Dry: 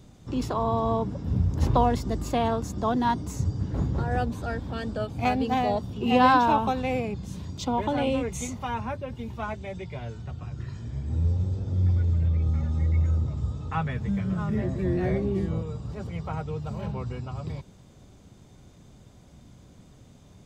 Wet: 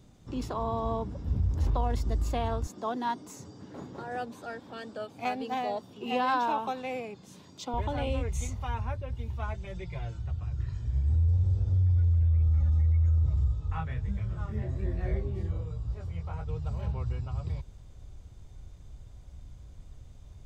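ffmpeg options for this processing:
-filter_complex "[0:a]asettb=1/sr,asplit=3[s0][s1][s2];[s0]atrim=end=2.664[s3];[s1]atrim=start=2.66:end=7.74,asetpts=PTS-STARTPTS,afade=t=in:d=0.004:c=qsin,afade=t=out:st=5.076:d=0.004:c=qsin,highpass=f=200:w=0.5412,highpass=f=200:w=1.3066[s4];[s2]atrim=start=7.736[s5];[s3][s4]acrossfade=d=0.004:c1=hsin:c2=qsin[s6];[s6][s5]acrossfade=d=0.004:c1=qsin:c2=hsin,asettb=1/sr,asplit=3[s7][s8][s9];[s7]atrim=end=9.544[s10];[s8]atrim=start=9.54:end=10.19,asetpts=PTS-STARTPTS,afade=t=in:d=0.004:c=qsin,afade=t=out:st=0.646:d=0.004:c=qsin,aecho=1:1:5.8:0.87,atrim=end_sample=28665[s11];[s9]atrim=start=10.186[s12];[s10][s11]acrossfade=d=0.004:c1=hsin:c2=qsin[s13];[s13][s12]acrossfade=d=0.004:c1=qsin:c2=hsin,asettb=1/sr,asplit=3[s14][s15][s16];[s14]atrim=end=13.484[s17];[s15]atrim=start=13.48:end=16.49,asetpts=PTS-STARTPTS,afade=t=in:d=0.004:c=qsin,afade=t=out:st=3.006:d=0.004:c=qsin,flanger=delay=18:depth=6.1:speed=1.3[s18];[s16]atrim=start=16.486[s19];[s17][s18]acrossfade=d=0.004:c1=hsin:c2=qsin[s20];[s20][s19]acrossfade=d=0.004:c1=qsin:c2=hsin,asubboost=boost=12:cutoff=58,alimiter=limit=0.2:level=0:latency=1:release=37,volume=0.531"

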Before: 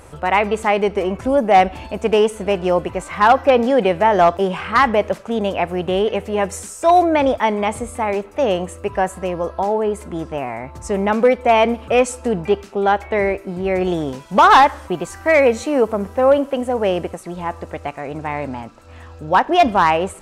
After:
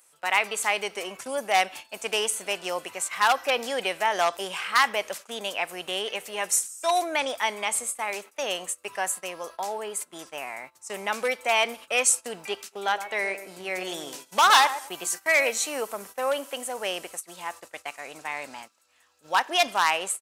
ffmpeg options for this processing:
-filter_complex "[0:a]asplit=3[s0][s1][s2];[s0]afade=t=out:st=12.71:d=0.02[s3];[s1]asplit=2[s4][s5];[s5]adelay=117,lowpass=f=880:p=1,volume=0.376,asplit=2[s6][s7];[s7]adelay=117,lowpass=f=880:p=1,volume=0.27,asplit=2[s8][s9];[s9]adelay=117,lowpass=f=880:p=1,volume=0.27[s10];[s4][s6][s8][s10]amix=inputs=4:normalize=0,afade=t=in:st=12.71:d=0.02,afade=t=out:st=15.49:d=0.02[s11];[s2]afade=t=in:st=15.49:d=0.02[s12];[s3][s11][s12]amix=inputs=3:normalize=0,highpass=110,agate=range=0.178:threshold=0.0316:ratio=16:detection=peak,aderivative,volume=2.51"

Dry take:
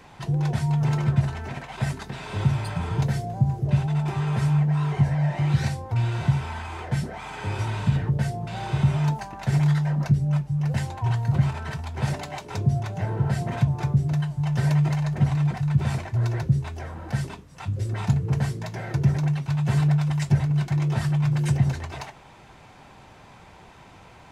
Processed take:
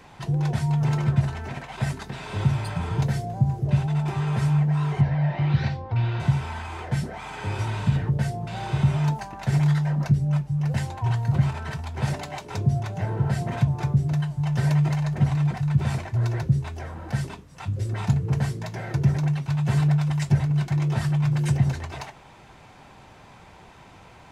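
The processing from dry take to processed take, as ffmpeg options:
-filter_complex "[0:a]asettb=1/sr,asplit=3[s0][s1][s2];[s0]atrim=end=5.014[s3];[s1]atrim=start=5.01:end=6.2,asetpts=PTS-STARTPTS,afade=t=in:d=0.004:c=qsin,afade=t=out:st=1.186:d=0.004:c=qsin,lowpass=f=4400:w=0.5412,lowpass=f=4400:w=1.3066[s4];[s2]atrim=start=6.196[s5];[s3][s4]acrossfade=d=0.004:c1=hsin:c2=qsin[s6];[s6][s5]acrossfade=d=0.004:c1=qsin:c2=hsin"

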